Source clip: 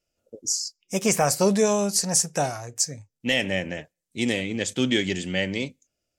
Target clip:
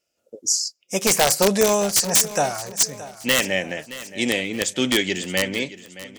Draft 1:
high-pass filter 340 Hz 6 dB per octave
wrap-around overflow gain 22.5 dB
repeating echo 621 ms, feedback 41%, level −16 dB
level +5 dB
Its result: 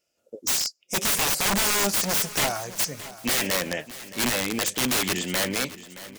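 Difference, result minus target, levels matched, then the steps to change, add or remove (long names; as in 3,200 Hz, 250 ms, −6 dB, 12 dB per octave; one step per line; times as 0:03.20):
wrap-around overflow: distortion +18 dB
change: wrap-around overflow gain 13 dB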